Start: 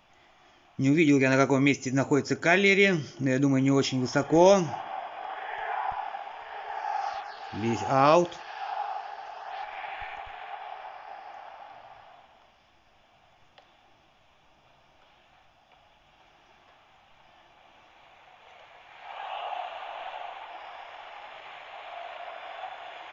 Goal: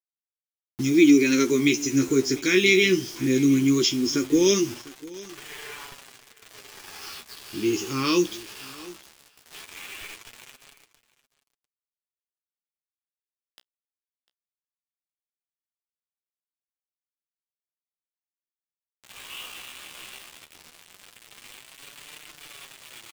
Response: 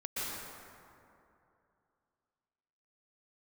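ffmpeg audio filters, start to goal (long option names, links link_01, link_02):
-af "firequalizer=gain_entry='entry(110,0);entry(180,1);entry(360,13);entry(690,-27);entry(1100,-2);entry(1600,-3);entry(2400,7);entry(4600,14);entry(7400,13);entry(11000,-13)':delay=0.05:min_phase=1,acrusher=bits=5:mix=0:aa=0.000001,flanger=delay=6.7:depth=9.5:regen=19:speed=0.18:shape=sinusoidal,aecho=1:1:699:0.0944"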